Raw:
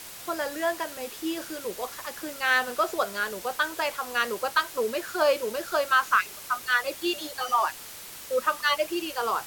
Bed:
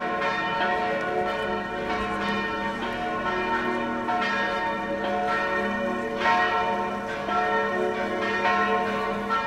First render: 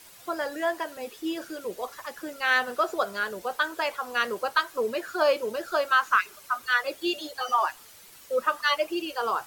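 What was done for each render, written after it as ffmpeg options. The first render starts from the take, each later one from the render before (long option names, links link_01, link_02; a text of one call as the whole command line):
ffmpeg -i in.wav -af "afftdn=noise_reduction=10:noise_floor=-42" out.wav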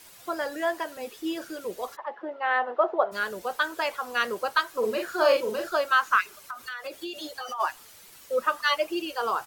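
ffmpeg -i in.wav -filter_complex "[0:a]asplit=3[link_01][link_02][link_03];[link_01]afade=type=out:start_time=1.95:duration=0.02[link_04];[link_02]highpass=350,equalizer=frequency=350:width_type=q:width=4:gain=4,equalizer=frequency=610:width_type=q:width=4:gain=5,equalizer=frequency=870:width_type=q:width=4:gain=9,equalizer=frequency=1500:width_type=q:width=4:gain=-6,equalizer=frequency=2400:width_type=q:width=4:gain=-9,lowpass=frequency=2500:width=0.5412,lowpass=frequency=2500:width=1.3066,afade=type=in:start_time=1.95:duration=0.02,afade=type=out:start_time=3.11:duration=0.02[link_05];[link_03]afade=type=in:start_time=3.11:duration=0.02[link_06];[link_04][link_05][link_06]amix=inputs=3:normalize=0,asplit=3[link_07][link_08][link_09];[link_07]afade=type=out:start_time=4.82:duration=0.02[link_10];[link_08]asplit=2[link_11][link_12];[link_12]adelay=42,volume=-3dB[link_13];[link_11][link_13]amix=inputs=2:normalize=0,afade=type=in:start_time=4.82:duration=0.02,afade=type=out:start_time=5.68:duration=0.02[link_14];[link_09]afade=type=in:start_time=5.68:duration=0.02[link_15];[link_10][link_14][link_15]amix=inputs=3:normalize=0,asplit=3[link_16][link_17][link_18];[link_16]afade=type=out:start_time=6.37:duration=0.02[link_19];[link_17]acompressor=threshold=-31dB:ratio=12:attack=3.2:release=140:knee=1:detection=peak,afade=type=in:start_time=6.37:duration=0.02,afade=type=out:start_time=7.59:duration=0.02[link_20];[link_18]afade=type=in:start_time=7.59:duration=0.02[link_21];[link_19][link_20][link_21]amix=inputs=3:normalize=0" out.wav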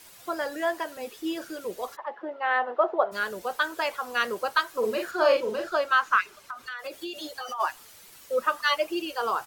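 ffmpeg -i in.wav -filter_complex "[0:a]asettb=1/sr,asplit=3[link_01][link_02][link_03];[link_01]atrim=end=5.114[link_04];[link_02]atrim=start=5.11:end=6.79,asetpts=PTS-STARTPTS,afade=type=in:duration=0.004:curve=qsin,afade=type=out:start_time=1.676:duration=0.004:curve=qsin,highshelf=frequency=8300:gain=-11.5[link_05];[link_03]atrim=start=6.786[link_06];[link_04][link_05]acrossfade=duration=0.004:curve1=hsin:curve2=qsin[link_07];[link_07][link_06]acrossfade=duration=0.004:curve1=qsin:curve2=hsin" out.wav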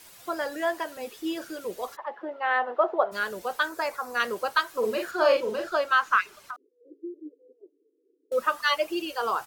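ffmpeg -i in.wav -filter_complex "[0:a]asettb=1/sr,asplit=3[link_01][link_02][link_03];[link_01]atrim=end=3.694[link_04];[link_02]atrim=start=3.69:end=4.2,asetpts=PTS-STARTPTS,afade=type=in:duration=0.004:curve=qsin,afade=type=out:start_time=0.506:duration=0.004:curve=qsin,equalizer=frequency=3100:width_type=o:width=0.45:gain=-13.5[link_05];[link_03]atrim=start=4.196[link_06];[link_04][link_05]acrossfade=duration=0.004:curve1=hsin:curve2=qsin[link_07];[link_07][link_06]acrossfade=duration=0.004:curve1=qsin:curve2=hsin,asettb=1/sr,asplit=3[link_08][link_09][link_10];[link_08]atrim=end=6.564[link_11];[link_09]atrim=start=6.56:end=8.32,asetpts=PTS-STARTPTS,afade=type=in:duration=0.004:curve=qsin,afade=type=out:start_time=1.756:duration=0.004:curve=qsin,asuperpass=centerf=360:order=12:qfactor=1.8[link_12];[link_10]atrim=start=8.316[link_13];[link_11][link_12]acrossfade=duration=0.004:curve1=hsin:curve2=qsin[link_14];[link_14][link_13]acrossfade=duration=0.004:curve1=qsin:curve2=hsin" out.wav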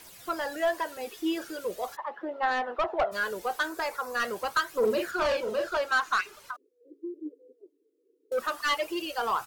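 ffmpeg -i in.wav -af "asoftclip=type=tanh:threshold=-20.5dB,aphaser=in_gain=1:out_gain=1:delay=2.9:decay=0.38:speed=0.41:type=triangular" out.wav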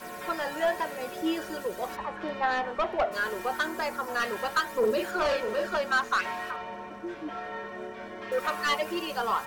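ffmpeg -i in.wav -i bed.wav -filter_complex "[1:a]volume=-13.5dB[link_01];[0:a][link_01]amix=inputs=2:normalize=0" out.wav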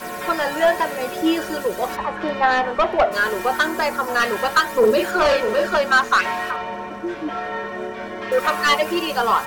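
ffmpeg -i in.wav -af "volume=10dB" out.wav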